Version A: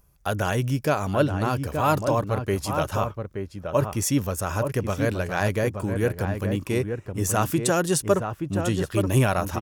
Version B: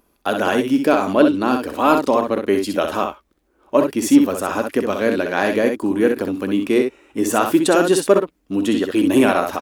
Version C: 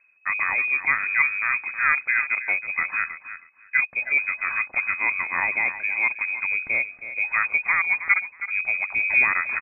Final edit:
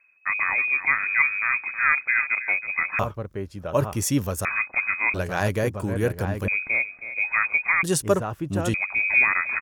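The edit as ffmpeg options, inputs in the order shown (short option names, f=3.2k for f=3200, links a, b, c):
-filter_complex "[0:a]asplit=3[a][b][c];[2:a]asplit=4[d][e][f][g];[d]atrim=end=2.992[h];[a]atrim=start=2.988:end=4.452[i];[e]atrim=start=4.448:end=5.142[j];[b]atrim=start=5.138:end=6.482[k];[f]atrim=start=6.478:end=7.832[l];[c]atrim=start=7.828:end=8.742[m];[g]atrim=start=8.738[n];[h][i]acrossfade=d=0.004:c1=hsin:c2=hsin[o];[o][j]acrossfade=d=0.004:c1=hsin:c2=hsin[p];[p][k]acrossfade=d=0.004:c1=hsin:c2=hsin[q];[q][l]acrossfade=d=0.004:c1=hsin:c2=hsin[r];[r][m]acrossfade=d=0.004:c1=hsin:c2=hsin[s];[s][n]acrossfade=d=0.004:c1=hsin:c2=hsin"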